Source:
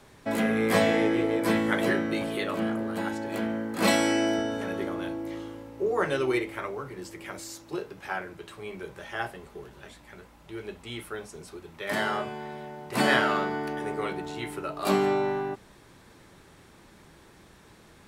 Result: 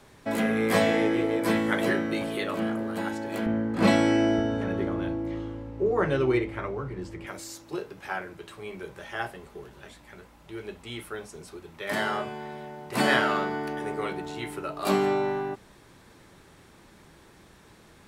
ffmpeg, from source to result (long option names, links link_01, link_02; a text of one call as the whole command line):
ffmpeg -i in.wav -filter_complex "[0:a]asettb=1/sr,asplit=3[link_01][link_02][link_03];[link_01]atrim=end=3.464[link_04];[link_02]atrim=start=3.46:end=7.27,asetpts=PTS-STARTPTS,afade=type=in:duration=0.004:curve=qsin,afade=type=out:start_time=3.806:duration=0.004:curve=qsin,aemphasis=mode=reproduction:type=bsi[link_05];[link_03]atrim=start=7.266[link_06];[link_04][link_05]acrossfade=duration=0.004:curve1=hsin:curve2=qsin[link_07];[link_07][link_06]acrossfade=duration=0.004:curve1=qsin:curve2=hsin" out.wav